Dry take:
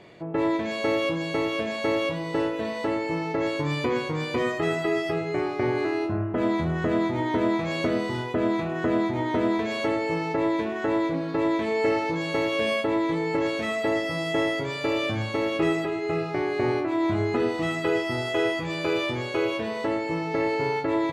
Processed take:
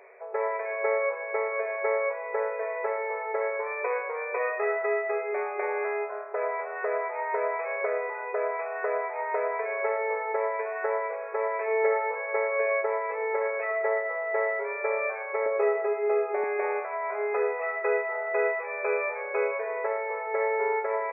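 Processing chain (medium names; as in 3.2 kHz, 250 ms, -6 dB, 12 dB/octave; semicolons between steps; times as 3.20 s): FFT band-pass 380–2600 Hz; 15.46–16.44 s: tilt EQ -3.5 dB/octave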